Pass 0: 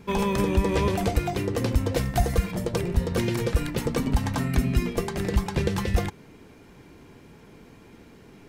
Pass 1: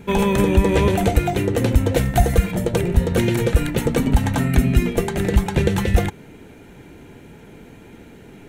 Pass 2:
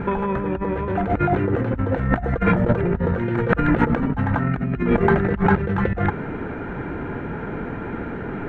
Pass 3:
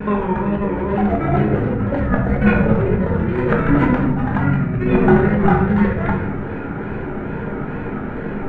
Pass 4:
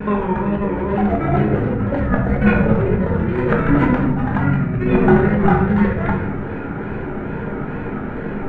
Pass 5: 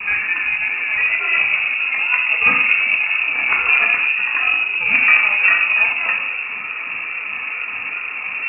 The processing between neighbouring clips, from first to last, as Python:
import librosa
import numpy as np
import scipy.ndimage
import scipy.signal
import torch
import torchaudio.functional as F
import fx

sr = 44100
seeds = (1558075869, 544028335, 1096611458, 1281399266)

y1 = fx.peak_eq(x, sr, hz=5000.0, db=-11.0, octaves=0.34)
y1 = fx.notch(y1, sr, hz=1100.0, q=5.2)
y1 = F.gain(torch.from_numpy(y1), 7.0).numpy()
y2 = fx.over_compress(y1, sr, threshold_db=-27.0, ratio=-1.0)
y2 = fx.lowpass_res(y2, sr, hz=1400.0, q=2.5)
y2 = F.gain(torch.from_numpy(y2), 5.0).numpy()
y3 = fx.wow_flutter(y2, sr, seeds[0], rate_hz=2.1, depth_cents=120.0)
y3 = fx.room_shoebox(y3, sr, seeds[1], volume_m3=300.0, walls='mixed', distance_m=1.3)
y3 = F.gain(torch.from_numpy(y3), -1.5).numpy()
y4 = y3
y5 = fx.freq_invert(y4, sr, carrier_hz=2700)
y5 = F.gain(torch.from_numpy(y5), -1.0).numpy()